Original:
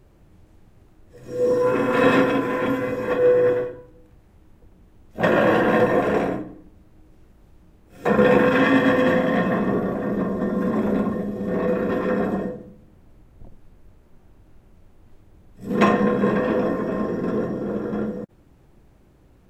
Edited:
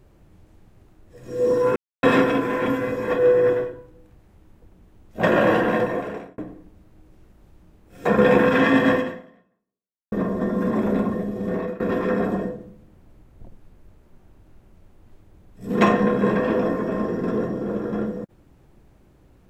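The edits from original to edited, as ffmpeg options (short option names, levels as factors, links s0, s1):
-filter_complex "[0:a]asplit=6[s0][s1][s2][s3][s4][s5];[s0]atrim=end=1.76,asetpts=PTS-STARTPTS,afade=t=out:st=1.756:d=0.004:c=hsin[s6];[s1]atrim=start=1.76:end=2.03,asetpts=PTS-STARTPTS,volume=0[s7];[s2]atrim=start=2.03:end=6.38,asetpts=PTS-STARTPTS,afade=t=in:d=0.004:c=hsin,afade=t=out:st=3.45:d=0.9[s8];[s3]atrim=start=6.38:end=10.12,asetpts=PTS-STARTPTS,afade=t=in:d=0.004:c=hsin,afade=t=out:st=2.57:d=1.17:c=exp[s9];[s4]atrim=start=10.12:end=11.8,asetpts=PTS-STARTPTS,afade=t=in:d=0.004:c=hsin,afade=t=out:st=1.37:d=0.31:silence=0.11885[s10];[s5]atrim=start=11.8,asetpts=PTS-STARTPTS,afade=t=in:d=0.004:c=hsin:silence=0.11885[s11];[s6][s7][s8][s9][s10][s11]concat=n=6:v=0:a=1"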